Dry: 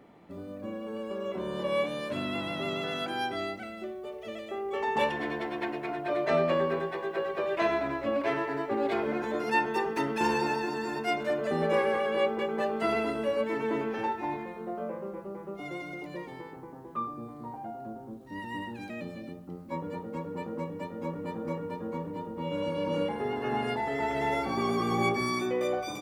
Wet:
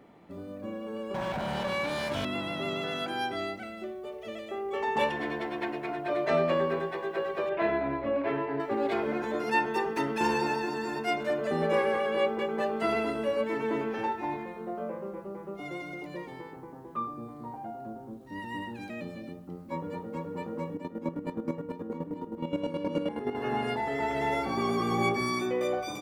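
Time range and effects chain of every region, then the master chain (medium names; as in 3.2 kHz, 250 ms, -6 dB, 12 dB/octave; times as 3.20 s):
1.14–2.25 s: comb filter that takes the minimum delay 1.3 ms + high-pass 66 Hz + level flattener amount 70%
7.49–8.60 s: distance through air 340 m + doubling 29 ms -6 dB
20.74–23.35 s: peaking EQ 280 Hz +8 dB 0.97 oct + square tremolo 9.5 Hz, depth 65%, duty 30%
whole clip: none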